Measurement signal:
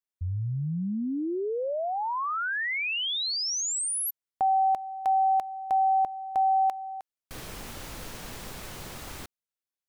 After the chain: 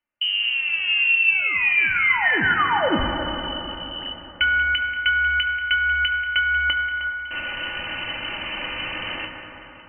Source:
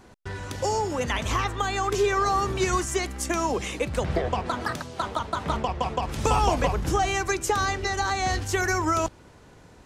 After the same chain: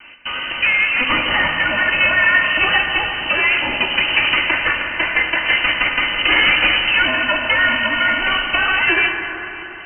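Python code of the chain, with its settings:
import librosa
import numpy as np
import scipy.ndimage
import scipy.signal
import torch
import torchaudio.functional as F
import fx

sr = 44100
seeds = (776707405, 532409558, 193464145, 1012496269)

p1 = fx.lower_of_two(x, sr, delay_ms=3.3)
p2 = fx.low_shelf(p1, sr, hz=210.0, db=-5.0)
p3 = fx.rider(p2, sr, range_db=5, speed_s=2.0)
p4 = p2 + F.gain(torch.from_numpy(p3), -0.5).numpy()
p5 = 10.0 ** (-11.5 / 20.0) * np.tanh(p4 / 10.0 ** (-11.5 / 20.0))
p6 = p5 + fx.echo_alternate(p5, sr, ms=185, hz=1300.0, feedback_pct=70, wet_db=-12.5, dry=0)
p7 = fx.freq_invert(p6, sr, carrier_hz=3000)
p8 = fx.rev_fdn(p7, sr, rt60_s=3.8, lf_ratio=1.0, hf_ratio=0.3, size_ms=57.0, drr_db=2.5)
y = F.gain(torch.from_numpy(p8), 5.5).numpy()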